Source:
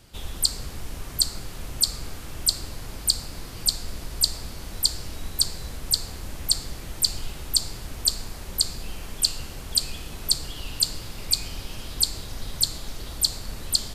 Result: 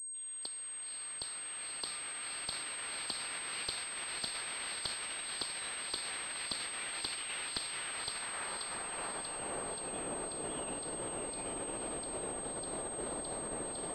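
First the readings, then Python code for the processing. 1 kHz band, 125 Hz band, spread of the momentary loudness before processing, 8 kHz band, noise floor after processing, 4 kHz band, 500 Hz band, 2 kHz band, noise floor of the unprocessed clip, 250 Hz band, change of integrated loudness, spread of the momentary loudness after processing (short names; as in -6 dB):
+1.0 dB, -18.0 dB, 13 LU, -8.5 dB, -44 dBFS, -16.0 dB, +1.0 dB, +1.5 dB, -38 dBFS, -5.5 dB, -12.5 dB, 3 LU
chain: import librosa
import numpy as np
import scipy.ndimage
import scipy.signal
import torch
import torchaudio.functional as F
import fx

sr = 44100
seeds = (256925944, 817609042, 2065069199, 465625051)

p1 = fx.fade_in_head(x, sr, length_s=3.4)
p2 = fx.peak_eq(p1, sr, hz=72.0, db=-9.5, octaves=2.1)
p3 = fx.over_compress(p2, sr, threshold_db=-36.0, ratio=-1.0)
p4 = p2 + (p3 * 10.0 ** (2.5 / 20.0))
p5 = np.clip(p4, -10.0 ** (-15.5 / 20.0), 10.0 ** (-15.5 / 20.0))
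p6 = fx.filter_sweep_bandpass(p5, sr, from_hz=2500.0, to_hz=520.0, start_s=7.69, end_s=9.81, q=1.0)
p7 = p6 + fx.echo_diffused(p6, sr, ms=508, feedback_pct=43, wet_db=-5.0, dry=0)
p8 = fx.pwm(p7, sr, carrier_hz=8400.0)
y = p8 * 10.0 ** (-3.5 / 20.0)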